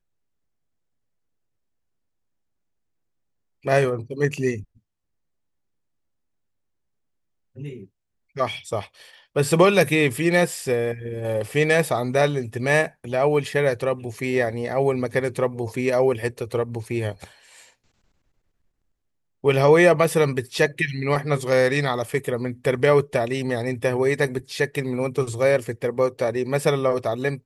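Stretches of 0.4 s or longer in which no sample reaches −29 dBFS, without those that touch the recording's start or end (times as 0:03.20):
0:04.60–0:07.60
0:07.77–0:08.37
0:08.83–0:09.36
0:17.24–0:19.44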